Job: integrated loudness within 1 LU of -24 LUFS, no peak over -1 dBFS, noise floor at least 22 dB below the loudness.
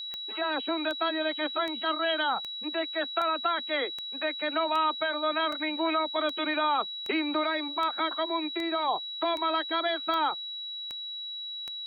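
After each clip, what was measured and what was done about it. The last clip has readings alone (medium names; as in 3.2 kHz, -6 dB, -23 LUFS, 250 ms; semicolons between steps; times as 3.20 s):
clicks found 16; steady tone 3.9 kHz; tone level -35 dBFS; loudness -29.0 LUFS; peak level -16.0 dBFS; loudness target -24.0 LUFS
-> de-click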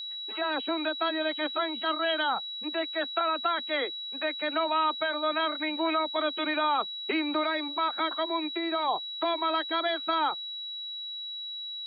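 clicks found 0; steady tone 3.9 kHz; tone level -35 dBFS
-> band-stop 3.9 kHz, Q 30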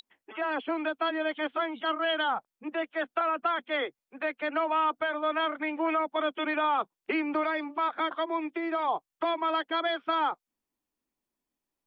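steady tone not found; loudness -30.0 LUFS; peak level -17.0 dBFS; loudness target -24.0 LUFS
-> trim +6 dB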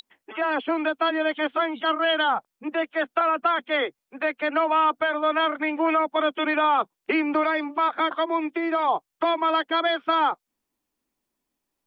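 loudness -24.0 LUFS; peak level -11.0 dBFS; noise floor -83 dBFS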